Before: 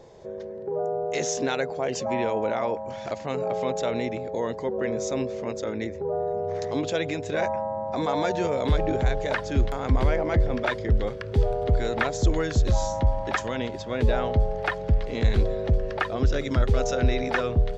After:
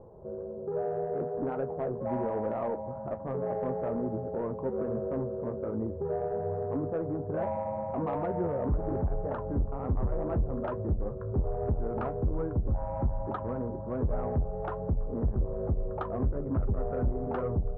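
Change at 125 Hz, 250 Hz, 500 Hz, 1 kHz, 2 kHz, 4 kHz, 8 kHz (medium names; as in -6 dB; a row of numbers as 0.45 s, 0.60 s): -5.5 dB, -4.0 dB, -5.5 dB, -7.0 dB, -19.5 dB, under -30 dB, no reading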